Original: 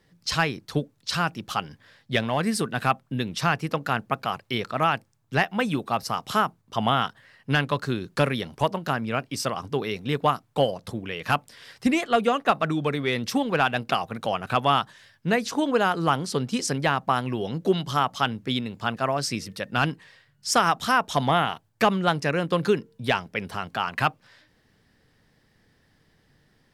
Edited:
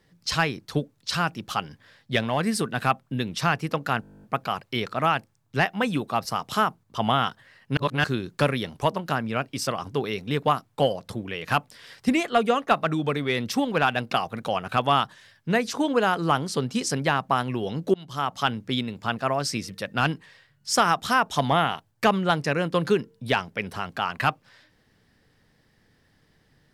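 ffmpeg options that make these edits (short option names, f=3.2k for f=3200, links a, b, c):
-filter_complex "[0:a]asplit=15[a][b][c][d][e][f][g][h][i][j][k][l][m][n][o];[a]atrim=end=4.032[p];[b]atrim=start=4.008:end=4.032[q];[c]atrim=start=4.008:end=4.032[r];[d]atrim=start=4.008:end=4.032[s];[e]atrim=start=4.008:end=4.032[t];[f]atrim=start=4.008:end=4.032[u];[g]atrim=start=4.008:end=4.032[v];[h]atrim=start=4.008:end=4.032[w];[i]atrim=start=4.008:end=4.032[x];[j]atrim=start=4.008:end=4.032[y];[k]atrim=start=4.008:end=4.032[z];[l]atrim=start=4.008:end=7.552[aa];[m]atrim=start=7.548:end=7.822,asetpts=PTS-STARTPTS,areverse[ab];[n]atrim=start=7.818:end=17.72,asetpts=PTS-STARTPTS,afade=t=out:st=9.898:d=0.004:c=hsin:silence=0.0668344[ac];[o]atrim=start=17.72,asetpts=PTS-STARTPTS,afade=t=in:d=0.48:silence=0.0668344[ad];[p][q]acrossfade=d=0.004:c1=hsin:c2=hsin[ae];[ae][r]acrossfade=d=0.004:c1=hsin:c2=hsin[af];[af][s]acrossfade=d=0.004:c1=hsin:c2=hsin[ag];[ag][t]acrossfade=d=0.004:c1=hsin:c2=hsin[ah];[ah][u]acrossfade=d=0.004:c1=hsin:c2=hsin[ai];[ai][v]acrossfade=d=0.004:c1=hsin:c2=hsin[aj];[aj][w]acrossfade=d=0.004:c1=hsin:c2=hsin[ak];[ak][x]acrossfade=d=0.004:c1=hsin:c2=hsin[al];[al][y]acrossfade=d=0.004:c1=hsin:c2=hsin[am];[am][z]acrossfade=d=0.004:c1=hsin:c2=hsin[an];[an][aa]acrossfade=d=0.004:c1=hsin:c2=hsin[ao];[ao][ab]acrossfade=d=0.004:c1=hsin:c2=hsin[ap];[ac][ad]concat=n=2:v=0:a=1[aq];[ap][aq]acrossfade=d=0.004:c1=hsin:c2=hsin"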